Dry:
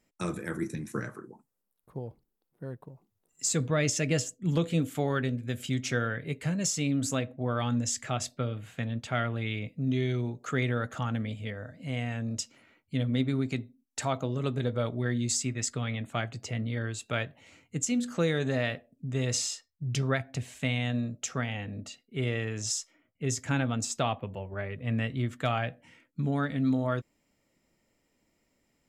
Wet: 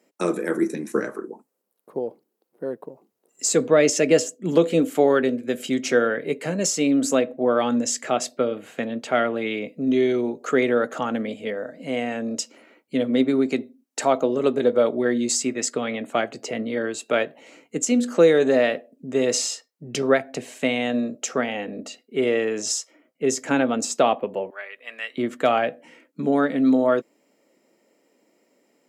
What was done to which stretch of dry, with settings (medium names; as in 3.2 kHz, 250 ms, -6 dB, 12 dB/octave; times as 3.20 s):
24.50–25.18 s: high-pass 1.5 kHz
whole clip: high-pass 210 Hz 24 dB/octave; peaking EQ 470 Hz +9 dB 1.5 oct; band-stop 3.5 kHz, Q 20; trim +6 dB